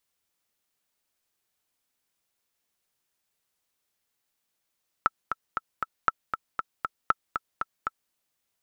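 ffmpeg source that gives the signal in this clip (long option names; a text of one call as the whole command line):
ffmpeg -f lavfi -i "aevalsrc='pow(10,(-7-7.5*gte(mod(t,4*60/235),60/235))/20)*sin(2*PI*1320*mod(t,60/235))*exp(-6.91*mod(t,60/235)/0.03)':duration=3.06:sample_rate=44100" out.wav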